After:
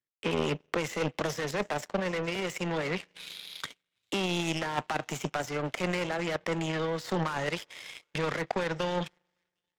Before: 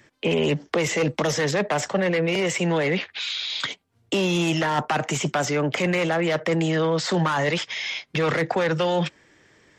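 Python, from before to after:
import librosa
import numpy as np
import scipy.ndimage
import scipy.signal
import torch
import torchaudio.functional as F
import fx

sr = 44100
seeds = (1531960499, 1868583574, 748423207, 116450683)

y = fx.echo_wet_highpass(x, sr, ms=763, feedback_pct=44, hz=2000.0, wet_db=-19.5)
y = fx.rev_spring(y, sr, rt60_s=2.6, pass_ms=(39,), chirp_ms=20, drr_db=18.0)
y = fx.power_curve(y, sr, exponent=2.0)
y = y * librosa.db_to_amplitude(-2.0)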